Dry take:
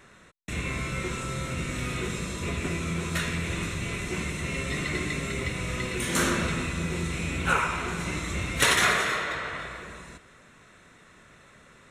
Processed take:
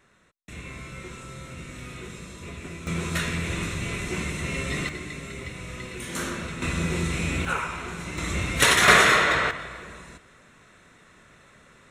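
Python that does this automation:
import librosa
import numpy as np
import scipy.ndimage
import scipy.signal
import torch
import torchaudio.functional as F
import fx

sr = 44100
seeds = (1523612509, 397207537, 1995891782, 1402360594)

y = fx.gain(x, sr, db=fx.steps((0.0, -8.0), (2.87, 1.5), (4.89, -6.0), (6.62, 3.5), (7.45, -3.5), (8.18, 3.0), (8.88, 9.5), (9.51, 0.0)))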